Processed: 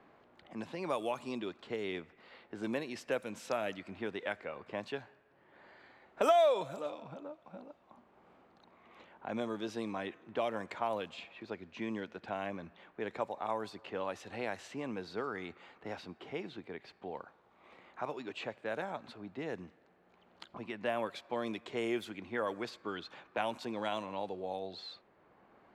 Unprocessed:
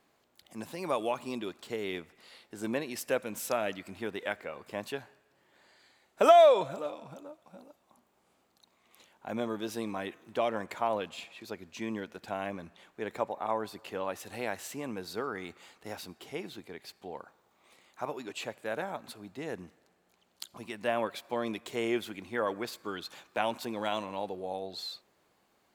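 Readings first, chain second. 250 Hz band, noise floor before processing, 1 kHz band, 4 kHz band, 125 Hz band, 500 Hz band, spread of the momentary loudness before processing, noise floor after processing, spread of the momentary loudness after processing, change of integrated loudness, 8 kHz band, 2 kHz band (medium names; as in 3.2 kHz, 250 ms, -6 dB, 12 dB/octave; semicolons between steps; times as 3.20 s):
-2.5 dB, -71 dBFS, -5.5 dB, -5.0 dB, -2.5 dB, -5.5 dB, 13 LU, -67 dBFS, 13 LU, -5.5 dB, -10.5 dB, -3.0 dB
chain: level-controlled noise filter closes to 1.9 kHz, open at -26.5 dBFS; three bands compressed up and down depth 40%; trim -3 dB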